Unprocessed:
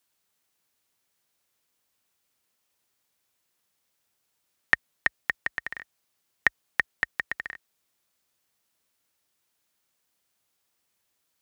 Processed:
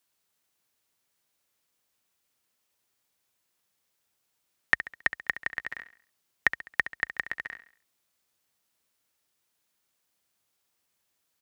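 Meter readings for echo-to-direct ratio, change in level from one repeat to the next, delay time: −12.0 dB, −7.5 dB, 68 ms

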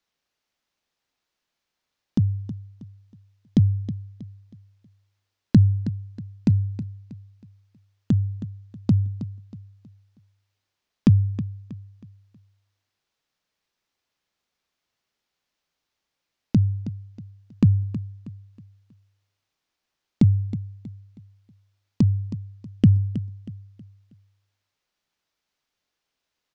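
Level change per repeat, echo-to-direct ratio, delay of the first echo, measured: −9.0 dB, −12.5 dB, 319 ms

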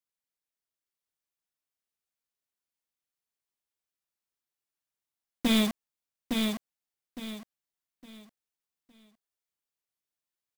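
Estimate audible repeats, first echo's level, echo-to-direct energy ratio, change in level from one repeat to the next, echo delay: 3, −4.5 dB, −4.0 dB, −11.0 dB, 861 ms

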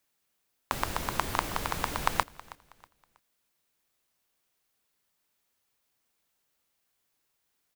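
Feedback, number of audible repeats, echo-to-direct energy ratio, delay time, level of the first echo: 32%, 2, −19.5 dB, 321 ms, −20.0 dB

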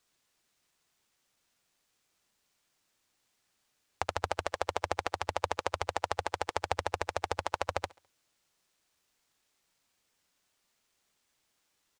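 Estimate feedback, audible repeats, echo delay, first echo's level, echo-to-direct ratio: 43%, 2, 69 ms, −23.0 dB, −22.0 dB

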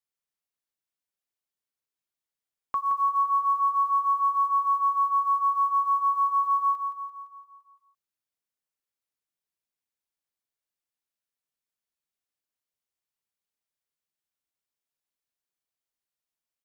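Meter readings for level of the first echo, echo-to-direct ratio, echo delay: −7.5 dB, −6.0 dB, 171 ms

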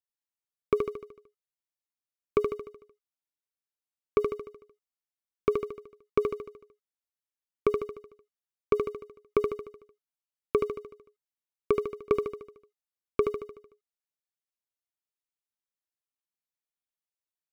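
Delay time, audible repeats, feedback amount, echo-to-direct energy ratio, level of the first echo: 75 ms, 6, 52%, −3.5 dB, −5.0 dB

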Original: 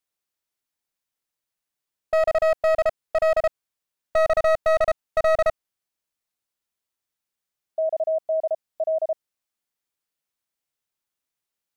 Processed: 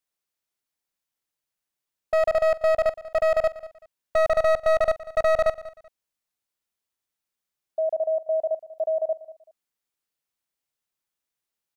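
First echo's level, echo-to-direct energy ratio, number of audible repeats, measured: −17.5 dB, −17.0 dB, 2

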